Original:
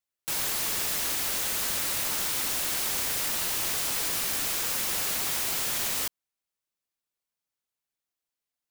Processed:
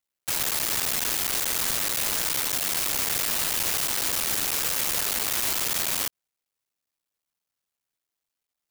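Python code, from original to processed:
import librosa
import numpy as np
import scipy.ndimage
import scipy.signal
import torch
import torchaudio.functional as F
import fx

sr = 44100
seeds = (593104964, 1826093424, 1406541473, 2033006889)

y = fx.cycle_switch(x, sr, every=3, mode='muted')
y = y * 10.0 ** (4.5 / 20.0)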